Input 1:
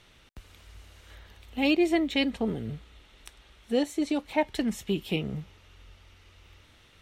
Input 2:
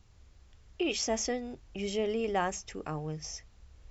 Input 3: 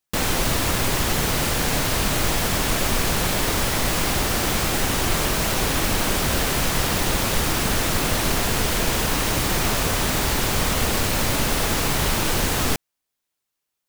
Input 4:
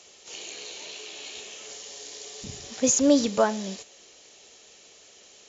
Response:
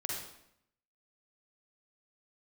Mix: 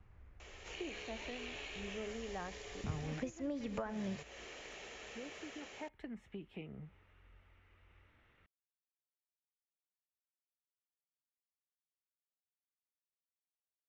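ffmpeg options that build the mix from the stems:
-filter_complex "[0:a]adelay=1450,volume=-11dB[link_01];[1:a]volume=-1dB[link_02];[3:a]highshelf=frequency=2800:gain=11,dynaudnorm=framelen=180:gausssize=5:maxgain=9dB,adelay=400,volume=-0.5dB[link_03];[link_02][link_03]amix=inputs=2:normalize=0,highshelf=frequency=4600:gain=-6,acompressor=threshold=-26dB:ratio=6,volume=0dB[link_04];[link_01]acompressor=threshold=-49dB:ratio=2,volume=0dB[link_05];[link_04][link_05]amix=inputs=2:normalize=0,acrossover=split=140[link_06][link_07];[link_07]acompressor=threshold=-40dB:ratio=4[link_08];[link_06][link_08]amix=inputs=2:normalize=0,lowpass=6900,highshelf=frequency=3000:width_type=q:width=1.5:gain=-13"

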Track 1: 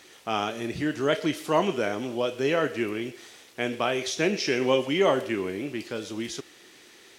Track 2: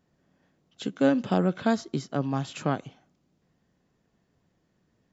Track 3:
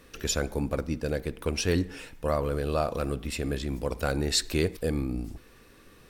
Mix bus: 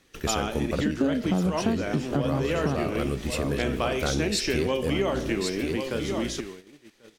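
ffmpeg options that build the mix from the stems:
ffmpeg -i stem1.wav -i stem2.wav -i stem3.wav -filter_complex "[0:a]volume=2dB,asplit=2[link_01][link_02];[link_02]volume=-13dB[link_03];[1:a]lowshelf=frequency=350:gain=8,volume=2dB[link_04];[2:a]volume=2.5dB,asplit=2[link_05][link_06];[link_06]volume=-9dB[link_07];[link_03][link_07]amix=inputs=2:normalize=0,aecho=0:1:1089:1[link_08];[link_01][link_04][link_05][link_08]amix=inputs=4:normalize=0,agate=range=-15dB:threshold=-39dB:ratio=16:detection=peak,equalizer=frequency=190:width=1.5:gain=3,acompressor=threshold=-22dB:ratio=6" out.wav

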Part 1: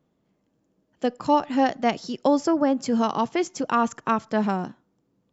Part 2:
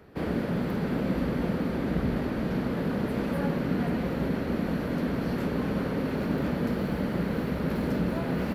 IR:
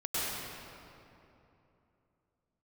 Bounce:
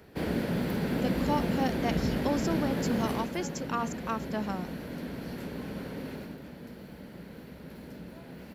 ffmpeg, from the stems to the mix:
-filter_complex "[0:a]volume=-11dB[link_01];[1:a]equalizer=frequency=1200:width_type=o:width=0.21:gain=-7,volume=-1.5dB,afade=type=out:start_time=3.11:duration=0.2:silence=0.398107,afade=type=out:start_time=6.11:duration=0.27:silence=0.421697[link_02];[link_01][link_02]amix=inputs=2:normalize=0,highshelf=frequency=3200:gain=9"

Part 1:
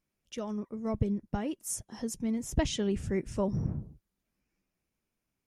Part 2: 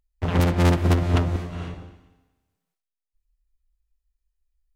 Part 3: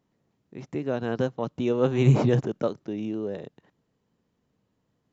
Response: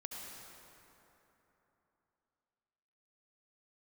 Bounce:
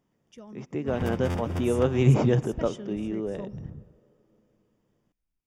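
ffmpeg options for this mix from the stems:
-filter_complex "[0:a]bass=frequency=250:gain=4,treble=frequency=4000:gain=0,volume=-10.5dB[link_01];[1:a]adelay=650,volume=-12.5dB[link_02];[2:a]volume=-1dB,asplit=2[link_03][link_04];[link_04]volume=-17dB[link_05];[3:a]atrim=start_sample=2205[link_06];[link_05][link_06]afir=irnorm=-1:irlink=0[link_07];[link_01][link_02][link_03][link_07]amix=inputs=4:normalize=0,asuperstop=centerf=4100:order=4:qfactor=6.6"

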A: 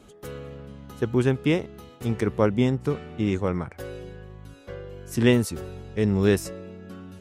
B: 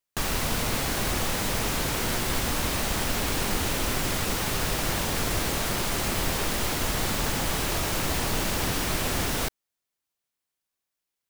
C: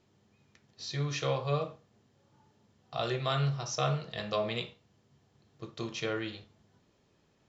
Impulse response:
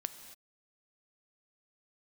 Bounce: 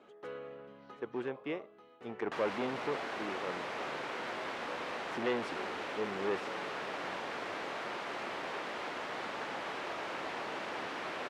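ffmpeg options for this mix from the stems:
-filter_complex "[0:a]volume=-2.5dB[link_01];[1:a]adelay=2150,volume=-6.5dB[link_02];[2:a]equalizer=frequency=6300:width=0.32:gain=-10.5,volume=-15.5dB,asplit=2[link_03][link_04];[link_04]apad=whole_len=317602[link_05];[link_01][link_05]sidechaincompress=threshold=-49dB:ratio=5:attack=6.3:release=1410[link_06];[link_06][link_02][link_03]amix=inputs=3:normalize=0,asoftclip=type=hard:threshold=-24.5dB,highpass=420,lowpass=2300"

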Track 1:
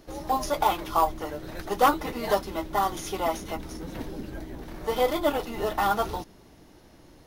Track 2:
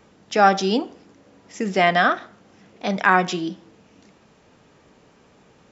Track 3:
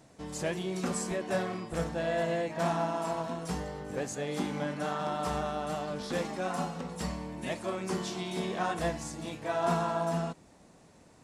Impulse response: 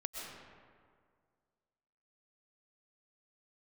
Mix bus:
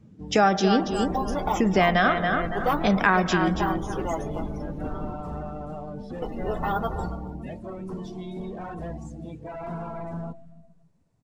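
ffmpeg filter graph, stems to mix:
-filter_complex "[0:a]adelay=850,volume=-5.5dB,asplit=3[link_01][link_02][link_03];[link_01]atrim=end=5.13,asetpts=PTS-STARTPTS,afade=type=out:start_time=5.126:duration=0.004:curve=hsin[link_04];[link_02]atrim=start=5.13:end=6.22,asetpts=PTS-STARTPTS,volume=0[link_05];[link_03]atrim=start=6.22,asetpts=PTS-STARTPTS,afade=type=in:duration=0.004:curve=hsin[link_06];[link_04][link_05][link_06]concat=n=3:v=0:a=1,asplit=3[link_07][link_08][link_09];[link_08]volume=-9dB[link_10];[link_09]volume=-10.5dB[link_11];[1:a]volume=1.5dB,asplit=3[link_12][link_13][link_14];[link_13]volume=-15dB[link_15];[link_14]volume=-8.5dB[link_16];[2:a]asoftclip=type=hard:threshold=-32.5dB,volume=-3dB,asplit=3[link_17][link_18][link_19];[link_18]volume=-13dB[link_20];[link_19]volume=-15.5dB[link_21];[3:a]atrim=start_sample=2205[link_22];[link_10][link_15][link_20]amix=inputs=3:normalize=0[link_23];[link_23][link_22]afir=irnorm=-1:irlink=0[link_24];[link_11][link_16][link_21]amix=inputs=3:normalize=0,aecho=0:1:280|560|840|1120|1400:1|0.32|0.102|0.0328|0.0105[link_25];[link_07][link_12][link_17][link_24][link_25]amix=inputs=5:normalize=0,lowshelf=frequency=200:gain=10,afftdn=noise_reduction=19:noise_floor=-38,acompressor=threshold=-19dB:ratio=2.5"

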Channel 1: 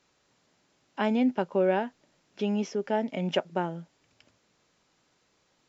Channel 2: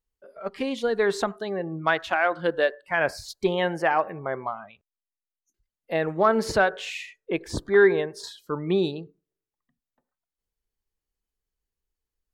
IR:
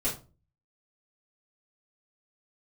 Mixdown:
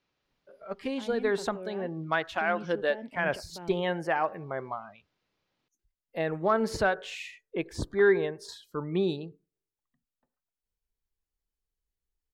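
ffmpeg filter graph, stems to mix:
-filter_complex "[0:a]lowpass=frequency=5200:width=0.5412,lowpass=frequency=5200:width=1.3066,equalizer=frequency=2700:width=1.5:gain=3,alimiter=limit=-23dB:level=0:latency=1:release=35,volume=-11dB[link_01];[1:a]adelay=250,volume=-5.5dB[link_02];[link_01][link_02]amix=inputs=2:normalize=0,lowshelf=frequency=170:gain=5"

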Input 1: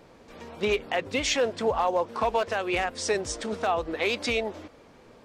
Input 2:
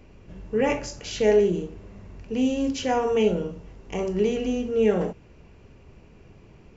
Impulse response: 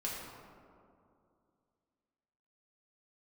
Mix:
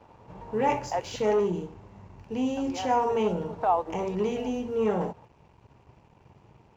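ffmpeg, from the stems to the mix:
-filter_complex "[0:a]bandpass=frequency=510:width_type=q:width=0.73:csg=0,volume=-1.5dB,asplit=3[link_01][link_02][link_03];[link_01]atrim=end=1.16,asetpts=PTS-STARTPTS,afade=type=out:start_time=1.156:duration=0.004:curve=hsin[link_04];[link_02]atrim=start=1.16:end=2.57,asetpts=PTS-STARTPTS,volume=0[link_05];[link_03]atrim=start=2.57,asetpts=PTS-STARTPTS,afade=type=in:duration=0.004:curve=hsin[link_06];[link_04][link_05][link_06]concat=n=3:v=0:a=1[link_07];[1:a]equalizer=frequency=120:width_type=o:width=0.79:gain=7.5,asoftclip=type=tanh:threshold=-12.5dB,volume=-5dB,asplit=2[link_08][link_09];[link_09]apad=whole_len=231459[link_10];[link_07][link_10]sidechaincompress=threshold=-42dB:ratio=8:attack=6.8:release=106[link_11];[link_11][link_08]amix=inputs=2:normalize=0,highpass=58,aeval=exprs='sgn(val(0))*max(abs(val(0))-0.00119,0)':channel_layout=same,equalizer=frequency=900:width=2.6:gain=13"

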